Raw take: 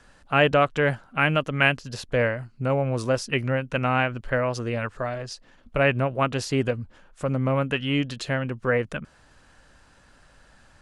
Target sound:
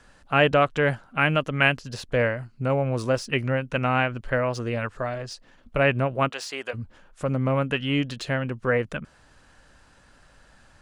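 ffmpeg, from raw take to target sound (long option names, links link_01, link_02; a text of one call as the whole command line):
ffmpeg -i in.wav -filter_complex "[0:a]asplit=3[link_01][link_02][link_03];[link_01]afade=type=out:start_time=6.28:duration=0.02[link_04];[link_02]highpass=730,afade=type=in:start_time=6.28:duration=0.02,afade=type=out:start_time=6.73:duration=0.02[link_05];[link_03]afade=type=in:start_time=6.73:duration=0.02[link_06];[link_04][link_05][link_06]amix=inputs=3:normalize=0,acrossover=split=5200[link_07][link_08];[link_08]asoftclip=type=tanh:threshold=-37.5dB[link_09];[link_07][link_09]amix=inputs=2:normalize=0" out.wav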